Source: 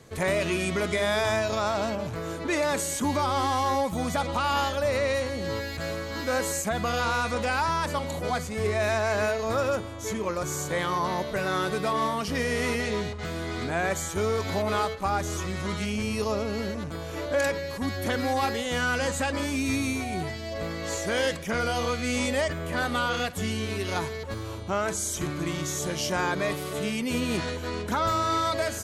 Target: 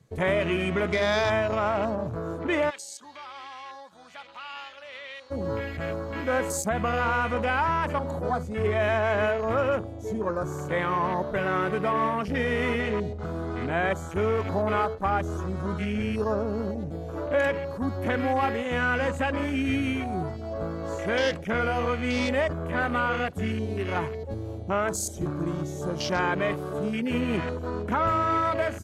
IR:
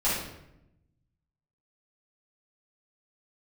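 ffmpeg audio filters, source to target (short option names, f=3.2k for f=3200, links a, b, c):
-filter_complex "[0:a]afwtdn=0.02,asplit=3[a][b][c];[a]afade=t=out:st=2.69:d=0.02[d];[b]bandpass=f=4k:t=q:w=1.8:csg=0,afade=t=in:st=2.69:d=0.02,afade=t=out:st=5.3:d=0.02[e];[c]afade=t=in:st=5.3:d=0.02[f];[d][e][f]amix=inputs=3:normalize=0,volume=1.5dB"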